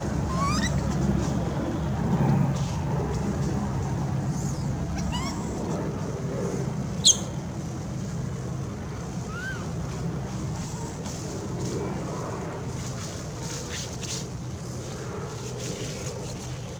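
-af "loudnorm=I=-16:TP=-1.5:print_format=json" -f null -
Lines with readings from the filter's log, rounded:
"input_i" : "-29.2",
"input_tp" : "-4.2",
"input_lra" : "7.4",
"input_thresh" : "-39.2",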